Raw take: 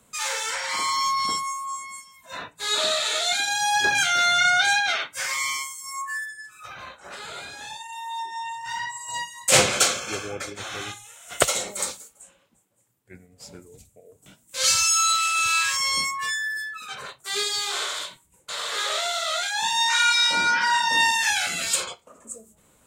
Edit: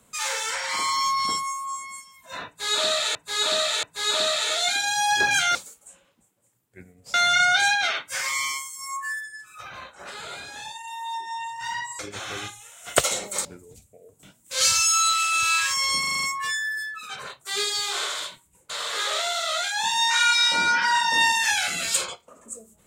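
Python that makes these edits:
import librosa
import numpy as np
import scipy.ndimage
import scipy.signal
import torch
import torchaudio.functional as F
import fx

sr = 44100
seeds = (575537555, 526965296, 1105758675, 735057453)

y = fx.edit(x, sr, fx.repeat(start_s=2.47, length_s=0.68, count=3),
    fx.cut(start_s=9.04, length_s=1.39),
    fx.move(start_s=11.89, length_s=1.59, to_s=4.19),
    fx.stutter(start_s=16.02, slice_s=0.04, count=7), tone=tone)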